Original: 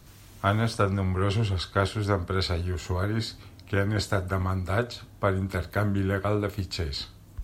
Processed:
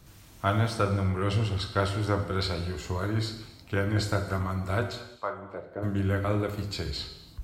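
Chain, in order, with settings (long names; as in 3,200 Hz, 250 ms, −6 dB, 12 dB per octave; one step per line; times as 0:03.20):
0:05.01–0:05.82: resonant band-pass 1,500 Hz → 360 Hz, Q 1.6
reverb whose tail is shaped and stops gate 370 ms falling, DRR 6 dB
level −2.5 dB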